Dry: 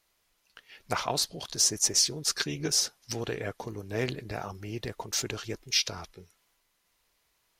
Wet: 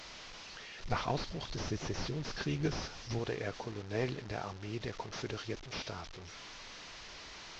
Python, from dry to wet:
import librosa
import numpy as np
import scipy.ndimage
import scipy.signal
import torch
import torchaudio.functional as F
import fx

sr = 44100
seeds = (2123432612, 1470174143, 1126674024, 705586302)

y = fx.delta_mod(x, sr, bps=32000, step_db=-39.0)
y = fx.low_shelf(y, sr, hz=130.0, db=12.0, at=(0.84, 3.19))
y = y * librosa.db_to_amplitude(-3.5)